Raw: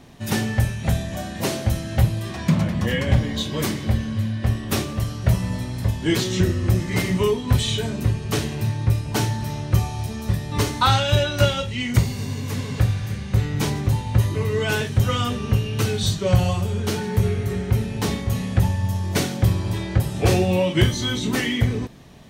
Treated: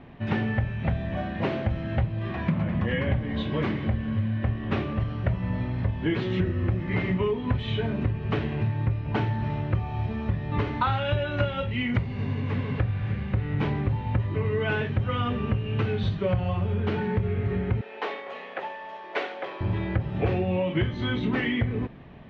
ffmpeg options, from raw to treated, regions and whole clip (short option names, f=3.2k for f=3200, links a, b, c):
-filter_complex "[0:a]asettb=1/sr,asplit=3[a][b][c];[a]atrim=end=17.814[d];[b]atrim=start=17.81:end=19.61,asetpts=PTS-STARTPTS,afade=t=in:d=0.004:c=qsin,afade=t=out:st=1.796:d=0.004:c=qsin,highpass=f=450:w=0.5412,highpass=f=450:w=1.3066,aeval=exprs='sgn(val(0))*max(abs(val(0))-0.00158,0)':c=same[e];[c]atrim=start=19.606[f];[d][e]acrossfade=d=0.004:c1=hsin:c2=qsin[g];[g][f]acrossfade=d=0.004:c1=qsin:c2=hsin,lowpass=f=2.7k:w=0.5412,lowpass=f=2.7k:w=1.3066,acompressor=threshold=-22dB:ratio=5"